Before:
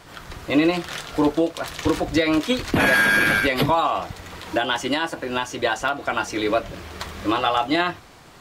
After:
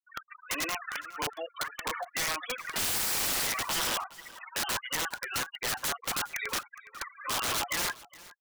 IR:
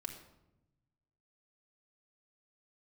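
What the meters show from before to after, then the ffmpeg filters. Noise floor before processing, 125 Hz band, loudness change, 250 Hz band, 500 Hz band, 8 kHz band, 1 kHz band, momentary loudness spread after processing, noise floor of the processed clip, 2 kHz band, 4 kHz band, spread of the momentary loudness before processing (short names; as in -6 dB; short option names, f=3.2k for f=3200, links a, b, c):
-46 dBFS, -17.5 dB, -9.5 dB, -23.5 dB, -18.0 dB, +5.0 dB, -12.0 dB, 14 LU, -63 dBFS, -12.5 dB, -5.0 dB, 13 LU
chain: -filter_complex "[0:a]acrossover=split=2000[a][b];[b]acompressor=threshold=-41dB:ratio=5[c];[a][c]amix=inputs=2:normalize=0,asuperpass=centerf=2000:order=4:qfactor=0.84,aphaser=in_gain=1:out_gain=1:delay=2.7:decay=0.44:speed=1.6:type=triangular,afftfilt=real='re*gte(hypot(re,im),0.0316)':imag='im*gte(hypot(re,im),0.0316)':win_size=1024:overlap=0.75,aeval=exprs='(mod(21.1*val(0)+1,2)-1)/21.1':c=same,aecho=1:1:414:0.1,volume=1.5dB"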